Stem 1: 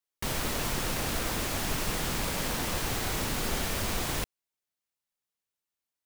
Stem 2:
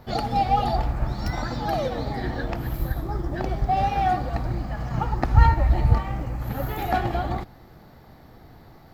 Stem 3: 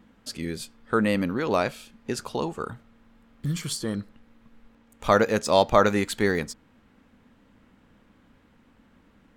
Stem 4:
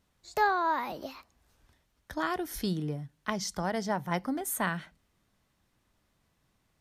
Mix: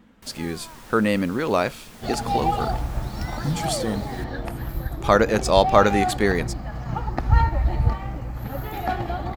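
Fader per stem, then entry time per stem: -14.5, -2.0, +2.5, -18.0 dB; 0.00, 1.95, 0.00, 0.00 s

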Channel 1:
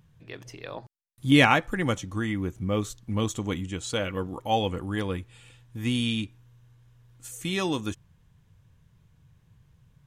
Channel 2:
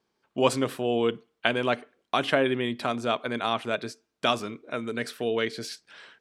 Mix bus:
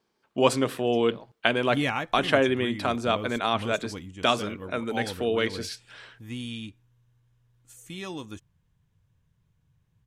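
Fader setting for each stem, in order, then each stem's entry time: -9.0, +1.5 dB; 0.45, 0.00 s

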